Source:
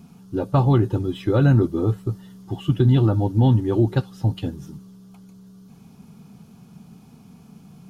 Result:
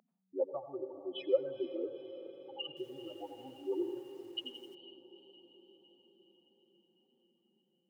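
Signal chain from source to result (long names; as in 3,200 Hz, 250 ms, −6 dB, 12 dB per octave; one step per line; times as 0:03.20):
expanding power law on the bin magnitudes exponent 3
high-pass filter 610 Hz 24 dB per octave
feedback delay with all-pass diffusion 460 ms, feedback 61%, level −12.5 dB
convolution reverb, pre-delay 81 ms, DRR 11.5 dB
0:02.68–0:04.75: feedback echo at a low word length 86 ms, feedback 55%, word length 11 bits, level −7.5 dB
level +4 dB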